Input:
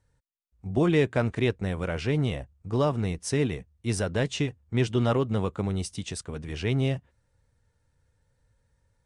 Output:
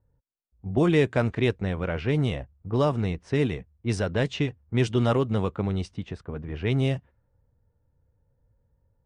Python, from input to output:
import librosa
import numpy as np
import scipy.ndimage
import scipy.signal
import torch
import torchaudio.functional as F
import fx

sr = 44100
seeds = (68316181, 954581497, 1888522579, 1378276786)

y = fx.env_lowpass(x, sr, base_hz=760.0, full_db=-19.5)
y = y * librosa.db_to_amplitude(1.5)